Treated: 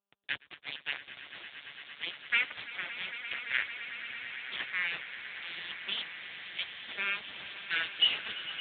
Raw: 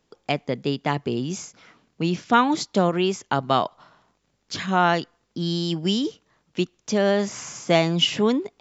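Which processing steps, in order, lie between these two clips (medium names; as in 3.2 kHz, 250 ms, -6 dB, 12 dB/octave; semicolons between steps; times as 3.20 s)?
one-sided wavefolder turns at -19 dBFS; steep high-pass 1.5 kHz 72 dB/octave; 2.55–3.54 s: compression 8:1, threshold -32 dBFS, peak gain reduction 8 dB; 4.61–5.92 s: treble shelf 2.2 kHz -7 dB; upward compressor, threshold -35 dBFS; bit crusher 5-bit; echo with a slow build-up 113 ms, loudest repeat 8, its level -14.5 dB; AMR-NB 10.2 kbps 8 kHz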